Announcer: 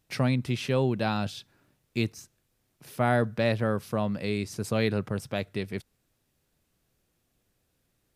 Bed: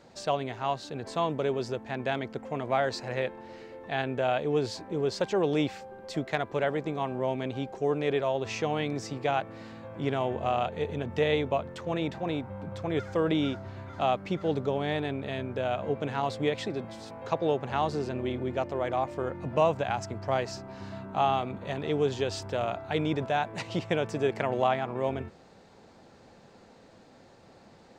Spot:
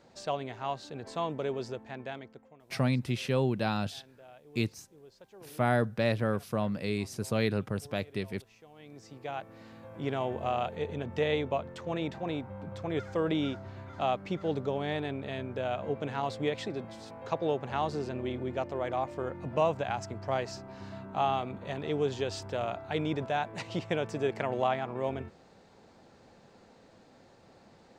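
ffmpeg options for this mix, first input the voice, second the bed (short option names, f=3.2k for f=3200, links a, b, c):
-filter_complex "[0:a]adelay=2600,volume=-2.5dB[a];[1:a]volume=18.5dB,afade=t=out:st=1.63:d=0.94:silence=0.0841395,afade=t=in:st=8.74:d=1.44:silence=0.0707946[b];[a][b]amix=inputs=2:normalize=0"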